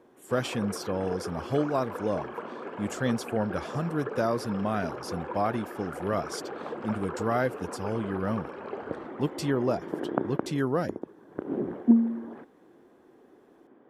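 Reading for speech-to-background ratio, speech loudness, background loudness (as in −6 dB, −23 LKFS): 3.5 dB, −31.0 LKFS, −34.5 LKFS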